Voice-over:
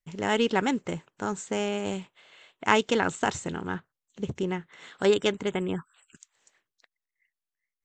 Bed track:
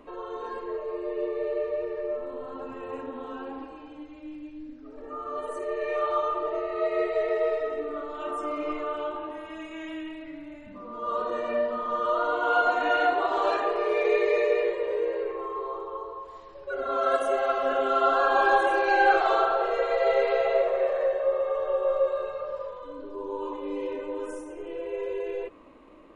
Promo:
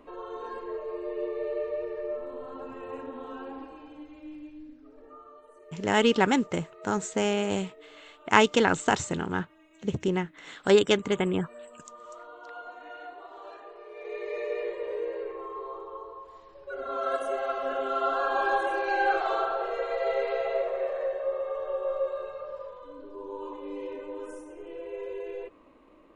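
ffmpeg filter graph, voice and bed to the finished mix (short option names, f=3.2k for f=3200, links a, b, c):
-filter_complex "[0:a]adelay=5650,volume=2.5dB[a];[1:a]volume=12.5dB,afade=t=out:st=4.4:d=0.99:silence=0.133352,afade=t=in:st=13.93:d=0.94:silence=0.177828[b];[a][b]amix=inputs=2:normalize=0"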